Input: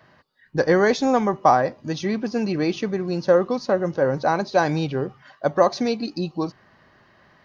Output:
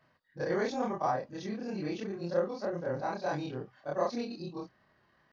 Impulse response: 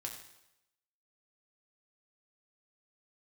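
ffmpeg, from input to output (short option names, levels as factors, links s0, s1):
-af "afftfilt=real='re':imag='-im':win_size=4096:overlap=0.75,atempo=1.4,volume=0.376"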